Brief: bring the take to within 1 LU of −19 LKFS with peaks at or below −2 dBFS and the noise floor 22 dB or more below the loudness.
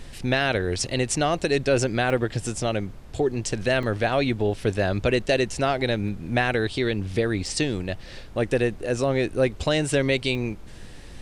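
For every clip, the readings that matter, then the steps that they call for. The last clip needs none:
number of dropouts 5; longest dropout 2.4 ms; background noise floor −41 dBFS; target noise floor −47 dBFS; integrated loudness −24.5 LKFS; sample peak −9.0 dBFS; target loudness −19.0 LKFS
→ repair the gap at 0:02.10/0:03.83/0:06.08/0:07.46/0:10.35, 2.4 ms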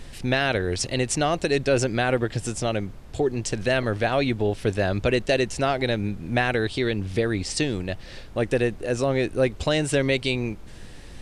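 number of dropouts 0; background noise floor −41 dBFS; target noise floor −47 dBFS
→ noise reduction from a noise print 6 dB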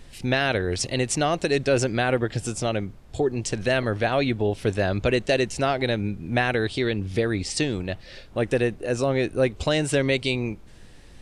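background noise floor −46 dBFS; target noise floor −47 dBFS
→ noise reduction from a noise print 6 dB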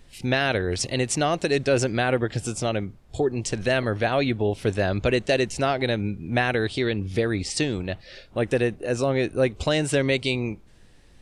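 background noise floor −51 dBFS; integrated loudness −24.5 LKFS; sample peak −9.0 dBFS; target loudness −19.0 LKFS
→ level +5.5 dB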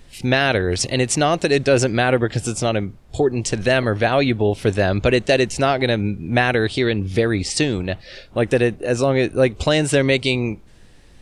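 integrated loudness −19.0 LKFS; sample peak −3.5 dBFS; background noise floor −46 dBFS

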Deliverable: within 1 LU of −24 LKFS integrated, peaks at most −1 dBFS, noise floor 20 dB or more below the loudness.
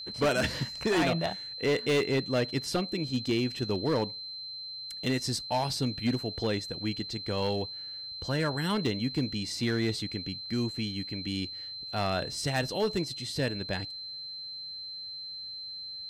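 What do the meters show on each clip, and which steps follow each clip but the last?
share of clipped samples 1.4%; peaks flattened at −21.5 dBFS; interfering tone 4,100 Hz; level of the tone −38 dBFS; integrated loudness −31.0 LKFS; sample peak −21.5 dBFS; target loudness −24.0 LKFS
→ clipped peaks rebuilt −21.5 dBFS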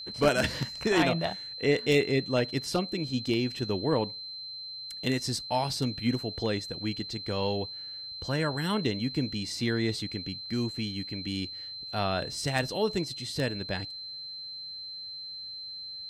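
share of clipped samples 0.0%; interfering tone 4,100 Hz; level of the tone −38 dBFS
→ notch filter 4,100 Hz, Q 30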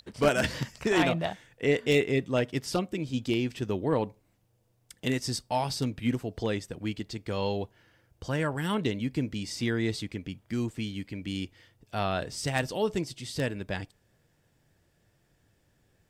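interfering tone none found; integrated loudness −30.5 LKFS; sample peak −12.0 dBFS; target loudness −24.0 LKFS
→ level +6.5 dB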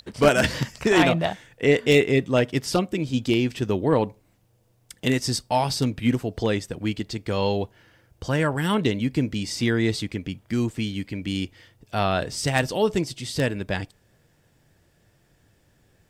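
integrated loudness −24.0 LKFS; sample peak −5.5 dBFS; background noise floor −63 dBFS

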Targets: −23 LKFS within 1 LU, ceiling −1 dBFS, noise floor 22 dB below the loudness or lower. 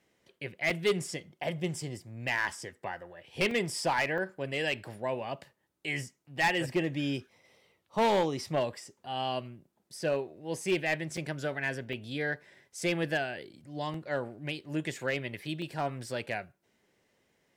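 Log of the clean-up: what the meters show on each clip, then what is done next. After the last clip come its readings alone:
share of clipped samples 0.8%; peaks flattened at −21.5 dBFS; number of dropouts 7; longest dropout 2.8 ms; integrated loudness −33.0 LKFS; sample peak −21.5 dBFS; target loudness −23.0 LKFS
→ clipped peaks rebuilt −21.5 dBFS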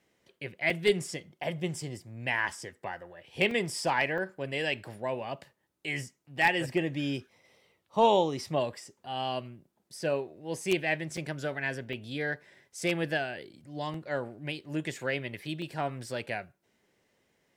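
share of clipped samples 0.0%; number of dropouts 7; longest dropout 2.8 ms
→ repair the gap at 0:00.70/0:03.51/0:04.18/0:11.17/0:11.93/0:13.94/0:15.62, 2.8 ms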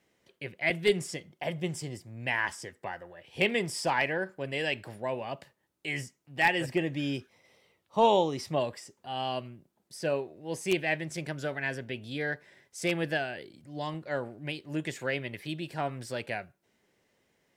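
number of dropouts 0; integrated loudness −32.0 LKFS; sample peak −12.5 dBFS; target loudness −23.0 LKFS
→ level +9 dB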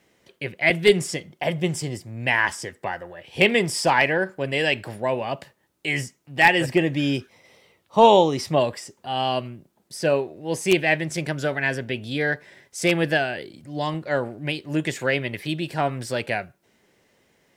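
integrated loudness −23.0 LKFS; sample peak −3.5 dBFS; background noise floor −66 dBFS

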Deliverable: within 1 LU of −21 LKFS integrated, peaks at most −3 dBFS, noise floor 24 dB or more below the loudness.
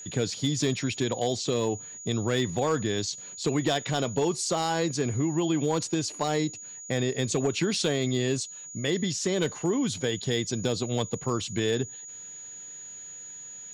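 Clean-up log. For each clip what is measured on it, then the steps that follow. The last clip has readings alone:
share of clipped samples 0.4%; peaks flattened at −17.5 dBFS; interfering tone 6,800 Hz; level of the tone −40 dBFS; integrated loudness −28.0 LKFS; sample peak −17.5 dBFS; target loudness −21.0 LKFS
→ clipped peaks rebuilt −17.5 dBFS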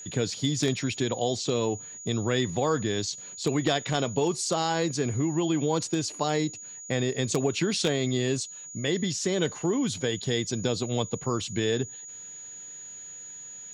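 share of clipped samples 0.0%; interfering tone 6,800 Hz; level of the tone −40 dBFS
→ notch filter 6,800 Hz, Q 30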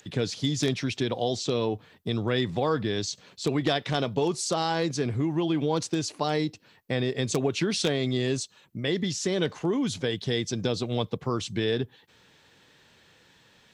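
interfering tone none found; integrated loudness −28.0 LKFS; sample peak −8.5 dBFS; target loudness −21.0 LKFS
→ level +7 dB
brickwall limiter −3 dBFS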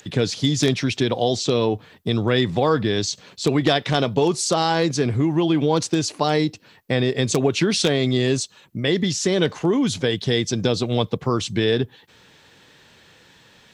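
integrated loudness −21.0 LKFS; sample peak −3.0 dBFS; background noise floor −53 dBFS

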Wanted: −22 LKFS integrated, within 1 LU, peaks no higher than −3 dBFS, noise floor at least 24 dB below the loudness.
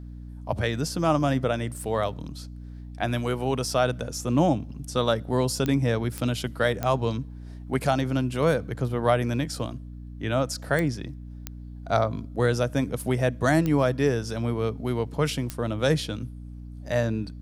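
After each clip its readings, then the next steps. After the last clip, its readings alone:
number of clicks 7; mains hum 60 Hz; hum harmonics up to 300 Hz; level of the hum −37 dBFS; integrated loudness −26.0 LKFS; sample peak −8.5 dBFS; target loudness −22.0 LKFS
→ click removal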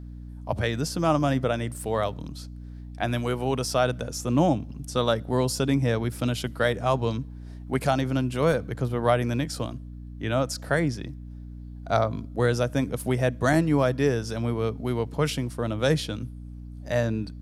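number of clicks 0; mains hum 60 Hz; hum harmonics up to 300 Hz; level of the hum −37 dBFS
→ hum removal 60 Hz, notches 5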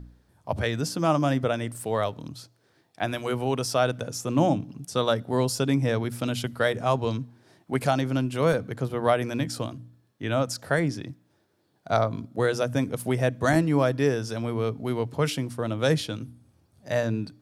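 mains hum none found; integrated loudness −26.5 LKFS; sample peak −8.0 dBFS; target loudness −22.0 LKFS
→ level +4.5 dB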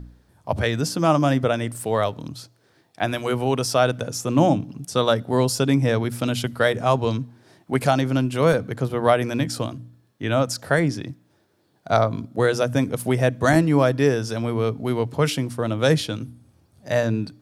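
integrated loudness −22.0 LKFS; sample peak −3.5 dBFS; background noise floor −62 dBFS

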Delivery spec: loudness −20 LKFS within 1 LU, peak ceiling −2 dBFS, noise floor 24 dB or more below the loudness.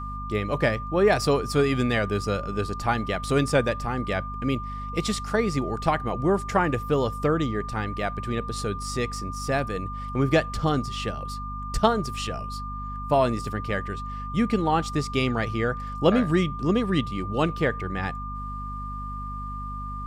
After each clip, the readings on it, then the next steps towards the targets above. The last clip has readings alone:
mains hum 50 Hz; hum harmonics up to 250 Hz; level of the hum −33 dBFS; interfering tone 1,200 Hz; level of the tone −34 dBFS; integrated loudness −26.0 LKFS; sample peak −5.0 dBFS; target loudness −20.0 LKFS
→ hum removal 50 Hz, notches 5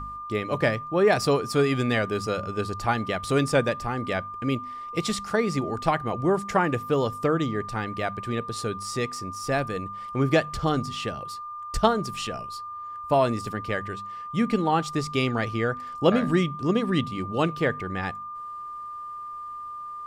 mains hum none found; interfering tone 1,200 Hz; level of the tone −34 dBFS
→ notch filter 1,200 Hz, Q 30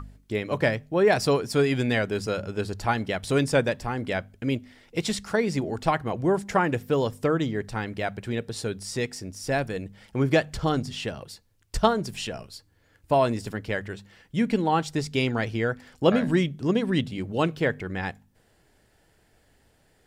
interfering tone none found; integrated loudness −26.5 LKFS; sample peak −4.5 dBFS; target loudness −20.0 LKFS
→ level +6.5 dB
brickwall limiter −2 dBFS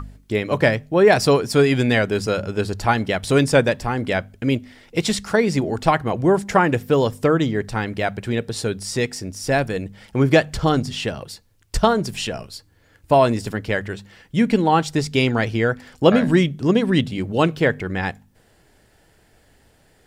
integrated loudness −20.0 LKFS; sample peak −2.0 dBFS; background noise floor −57 dBFS

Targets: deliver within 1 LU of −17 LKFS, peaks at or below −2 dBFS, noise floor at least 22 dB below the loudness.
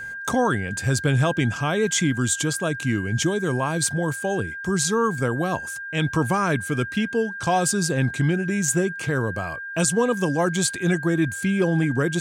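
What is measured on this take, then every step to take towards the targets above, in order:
interfering tone 1,600 Hz; level of the tone −31 dBFS; integrated loudness −23.0 LKFS; sample peak −9.0 dBFS; target loudness −17.0 LKFS
→ notch filter 1,600 Hz, Q 30
level +6 dB

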